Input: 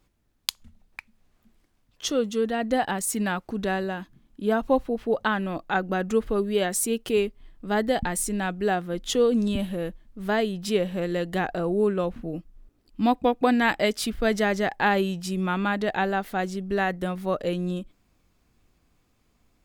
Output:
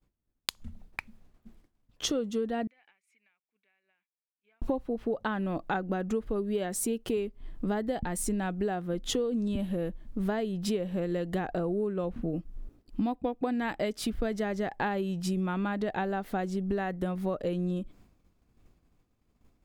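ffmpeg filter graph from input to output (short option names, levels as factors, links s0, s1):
-filter_complex "[0:a]asettb=1/sr,asplit=3[s0][s1][s2];[s0]atrim=end=2.674[s3];[s1]atrim=start=2.67:end=4.62,asetpts=PTS-STARTPTS,afade=t=in:d=0.004:c=qsin,afade=t=out:st=1.946:d=0.004:c=qsin,bandpass=f=2300:t=q:w=16,acompressor=threshold=0.001:ratio=20:attack=3.2:release=140:knee=1:detection=peak[s4];[s2]atrim=start=4.616[s5];[s3][s4]acrossfade=d=0.004:c1=hsin:c2=qsin[s6];[s6][s5]acrossfade=d=0.004:c1=qsin:c2=hsin,agate=range=0.0224:threshold=0.00158:ratio=3:detection=peak,tiltshelf=f=970:g=4,acompressor=threshold=0.02:ratio=8,volume=2"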